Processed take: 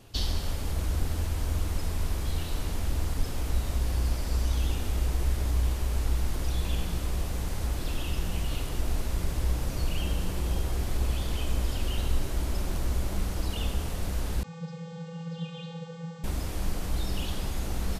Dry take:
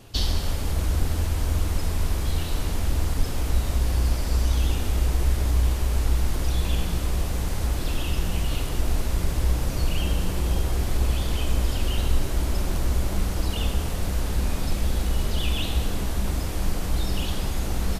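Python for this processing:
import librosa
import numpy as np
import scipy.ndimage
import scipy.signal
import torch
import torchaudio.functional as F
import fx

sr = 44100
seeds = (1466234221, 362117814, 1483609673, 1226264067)

y = fx.vocoder(x, sr, bands=32, carrier='square', carrier_hz=166.0, at=(14.43, 16.24))
y = y * 10.0 ** (-5.0 / 20.0)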